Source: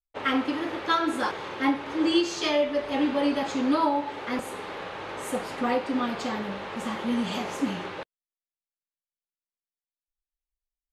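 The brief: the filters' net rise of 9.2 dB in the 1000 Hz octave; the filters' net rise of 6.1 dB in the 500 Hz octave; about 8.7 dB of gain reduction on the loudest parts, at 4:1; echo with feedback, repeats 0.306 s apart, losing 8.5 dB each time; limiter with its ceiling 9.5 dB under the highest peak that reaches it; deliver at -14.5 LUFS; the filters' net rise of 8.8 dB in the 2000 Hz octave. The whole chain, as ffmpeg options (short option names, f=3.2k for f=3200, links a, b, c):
-af "equalizer=f=500:t=o:g=4.5,equalizer=f=1k:t=o:g=8,equalizer=f=2k:t=o:g=8,acompressor=threshold=-21dB:ratio=4,alimiter=limit=-20.5dB:level=0:latency=1,aecho=1:1:306|612|918|1224:0.376|0.143|0.0543|0.0206,volume=14dB"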